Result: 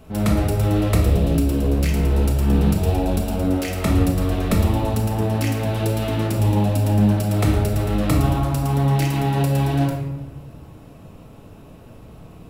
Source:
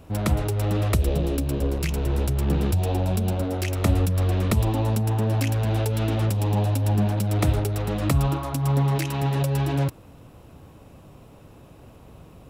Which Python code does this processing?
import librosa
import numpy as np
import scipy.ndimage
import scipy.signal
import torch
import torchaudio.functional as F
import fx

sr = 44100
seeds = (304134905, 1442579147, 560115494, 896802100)

y = fx.room_shoebox(x, sr, seeds[0], volume_m3=500.0, walls='mixed', distance_m=1.5)